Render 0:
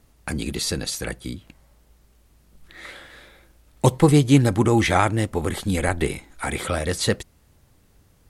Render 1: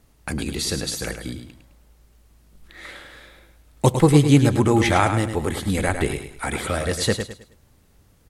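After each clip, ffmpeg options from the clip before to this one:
ffmpeg -i in.wav -af "aecho=1:1:105|210|315|420:0.398|0.127|0.0408|0.013" out.wav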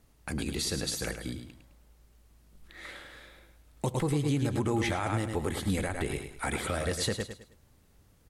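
ffmpeg -i in.wav -af "alimiter=limit=-14.5dB:level=0:latency=1:release=134,volume=-5.5dB" out.wav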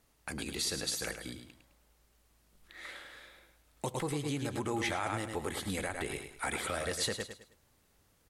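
ffmpeg -i in.wav -af "lowshelf=frequency=320:gain=-10,volume=-1dB" out.wav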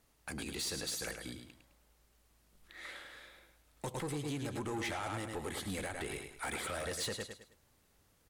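ffmpeg -i in.wav -af "asoftclip=type=tanh:threshold=-31.5dB,volume=-1dB" out.wav

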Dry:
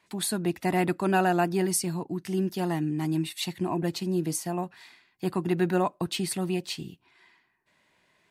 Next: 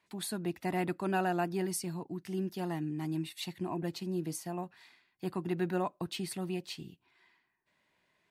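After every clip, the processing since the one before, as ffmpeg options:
ffmpeg -i in.wav -af "equalizer=frequency=8200:width_type=o:width=1:gain=-3,volume=-7.5dB" out.wav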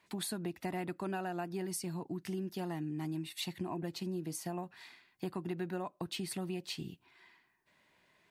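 ffmpeg -i in.wav -af "acompressor=threshold=-41dB:ratio=5,volume=5dB" out.wav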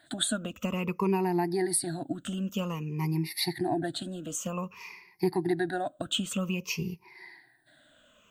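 ffmpeg -i in.wav -af "afftfilt=real='re*pow(10,22/40*sin(2*PI*(0.81*log(max(b,1)*sr/1024/100)/log(2)-(-0.52)*(pts-256)/sr)))':imag='im*pow(10,22/40*sin(2*PI*(0.81*log(max(b,1)*sr/1024/100)/log(2)-(-0.52)*(pts-256)/sr)))':win_size=1024:overlap=0.75,volume=4.5dB" out.wav

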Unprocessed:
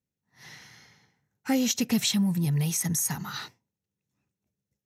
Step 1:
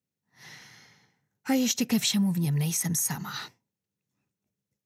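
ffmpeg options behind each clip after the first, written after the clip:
ffmpeg -i in.wav -af "highpass=99" out.wav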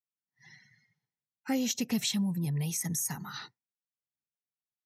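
ffmpeg -i in.wav -af "afftdn=noise_reduction=23:noise_floor=-47,volume=-5dB" out.wav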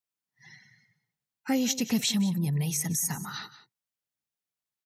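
ffmpeg -i in.wav -af "aecho=1:1:181:0.168,volume=3.5dB" out.wav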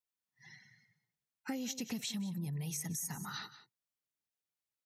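ffmpeg -i in.wav -af "acompressor=threshold=-32dB:ratio=6,volume=-4.5dB" out.wav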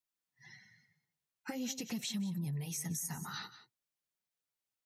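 ffmpeg -i in.wav -af "flanger=delay=5.3:depth=7.3:regen=-35:speed=0.48:shape=sinusoidal,volume=4dB" out.wav

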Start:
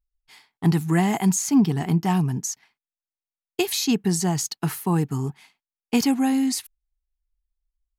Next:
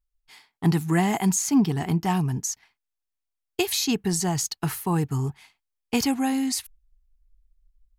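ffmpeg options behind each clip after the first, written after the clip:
ffmpeg -i in.wav -af "asubboost=boost=8.5:cutoff=68" out.wav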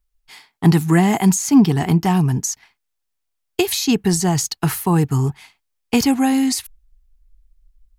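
ffmpeg -i in.wav -filter_complex "[0:a]acrossover=split=480[link_01][link_02];[link_02]acompressor=threshold=-27dB:ratio=6[link_03];[link_01][link_03]amix=inputs=2:normalize=0,volume=8dB" out.wav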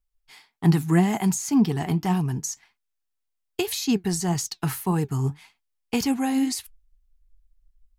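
ffmpeg -i in.wav -af "flanger=delay=3.9:depth=3.9:regen=74:speed=1.8:shape=triangular,volume=-3dB" out.wav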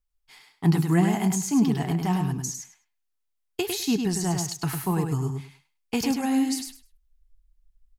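ffmpeg -i in.wav -af "aecho=1:1:102|204|306:0.531|0.0903|0.0153,volume=-2dB" out.wav

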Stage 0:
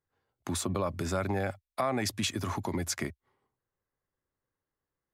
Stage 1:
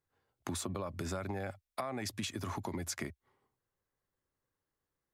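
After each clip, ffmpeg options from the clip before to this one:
ffmpeg -i in.wav -af "acompressor=threshold=-35dB:ratio=6" out.wav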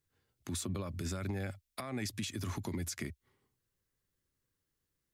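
ffmpeg -i in.wav -af "equalizer=frequency=800:width_type=o:width=1.9:gain=-12,alimiter=level_in=9.5dB:limit=-24dB:level=0:latency=1:release=103,volume=-9.5dB,volume=5.5dB" out.wav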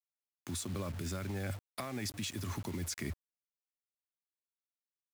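ffmpeg -i in.wav -af "areverse,acompressor=threshold=-45dB:ratio=10,areverse,acrusher=bits=9:mix=0:aa=0.000001,volume=9.5dB" out.wav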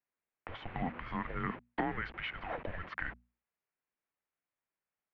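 ffmpeg -i in.wav -af "highpass=frequency=430:width_type=q:width=0.5412,highpass=frequency=430:width_type=q:width=1.307,lowpass=frequency=2800:width_type=q:width=0.5176,lowpass=frequency=2800:width_type=q:width=0.7071,lowpass=frequency=2800:width_type=q:width=1.932,afreqshift=-360,bandreject=frequency=60:width_type=h:width=6,bandreject=frequency=120:width_type=h:width=6,bandreject=frequency=180:width_type=h:width=6,bandreject=frequency=240:width_type=h:width=6,volume=9dB" out.wav

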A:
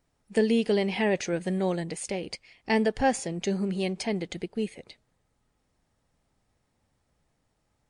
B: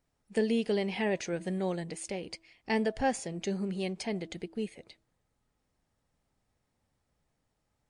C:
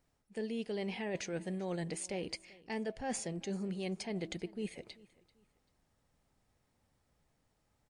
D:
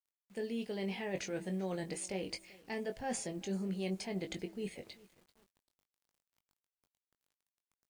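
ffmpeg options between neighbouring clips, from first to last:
ffmpeg -i in.wav -af "bandreject=frequency=327.3:width_type=h:width=4,bandreject=frequency=654.6:width_type=h:width=4,bandreject=frequency=981.9:width_type=h:width=4,volume=-5dB" out.wav
ffmpeg -i in.wav -af "areverse,acompressor=threshold=-37dB:ratio=10,areverse,aecho=1:1:389|778:0.075|0.0232,volume=2dB" out.wav
ffmpeg -i in.wav -filter_complex "[0:a]acrusher=bits=10:mix=0:aa=0.000001,asplit=2[link_01][link_02];[link_02]adelay=21,volume=-7dB[link_03];[link_01][link_03]amix=inputs=2:normalize=0,volume=-1dB" out.wav

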